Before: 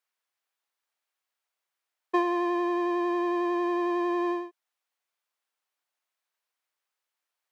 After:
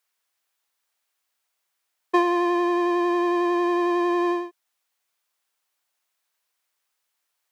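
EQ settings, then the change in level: high shelf 3900 Hz +6 dB; +5.0 dB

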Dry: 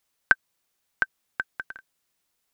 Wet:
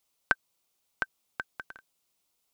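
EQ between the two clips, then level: low shelf 230 Hz -3 dB; bell 1700 Hz -10 dB 0.5 oct; 0.0 dB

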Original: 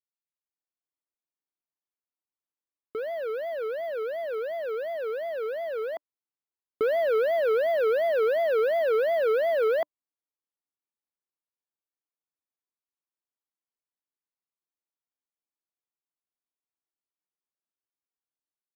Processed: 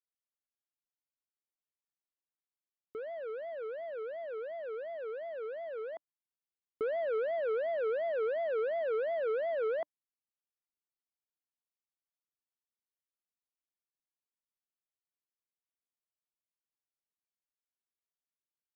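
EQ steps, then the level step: air absorption 250 m; notch 4200 Hz, Q 22; -8.0 dB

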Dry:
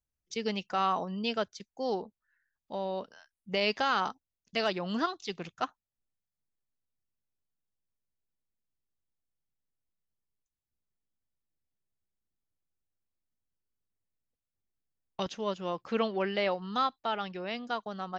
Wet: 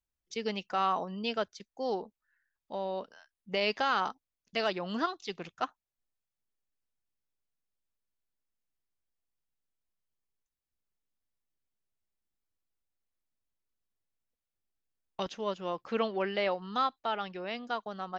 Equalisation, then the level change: bell 120 Hz -5 dB 1.9 oct; high shelf 4900 Hz -5 dB; 0.0 dB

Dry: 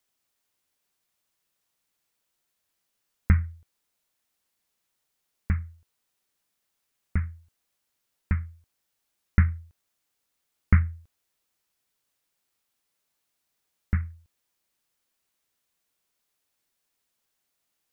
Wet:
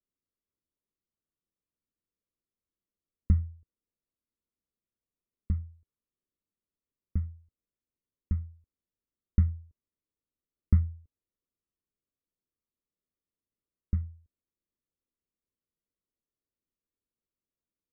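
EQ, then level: running mean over 55 samples; air absorption 420 m; bell 130 Hz -5 dB 0.77 oct; -2.0 dB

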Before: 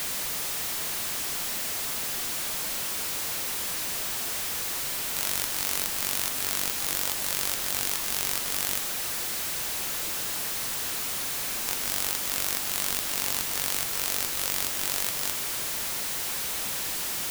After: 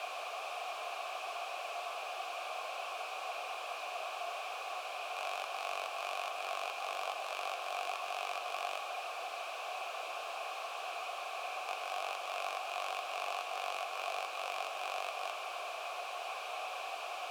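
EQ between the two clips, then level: vowel filter a; HPF 420 Hz 24 dB/oct; high shelf 5100 Hz -5.5 dB; +9.5 dB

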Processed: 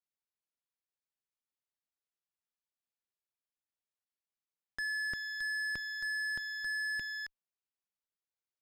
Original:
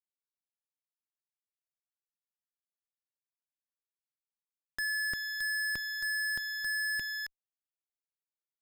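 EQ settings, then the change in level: air absorption 60 m; -2.0 dB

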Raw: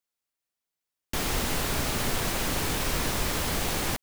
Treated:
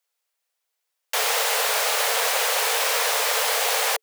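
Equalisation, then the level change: Chebyshev high-pass 440 Hz, order 8; +9.0 dB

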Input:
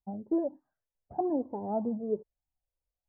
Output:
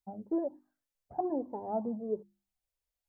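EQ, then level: tilt shelf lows -3.5 dB, about 1100 Hz; notches 50/100/150/200/250/300/350 Hz; 0.0 dB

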